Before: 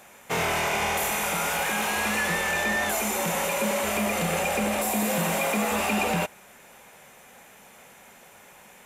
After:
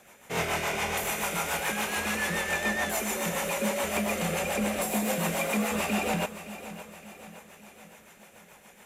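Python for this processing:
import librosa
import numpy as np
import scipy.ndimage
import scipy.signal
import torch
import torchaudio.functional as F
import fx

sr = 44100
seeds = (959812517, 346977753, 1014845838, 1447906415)

p1 = fx.rotary(x, sr, hz=7.0)
p2 = p1 + fx.echo_feedback(p1, sr, ms=567, feedback_pct=50, wet_db=-14.0, dry=0)
y = F.gain(torch.from_numpy(p2), -1.0).numpy()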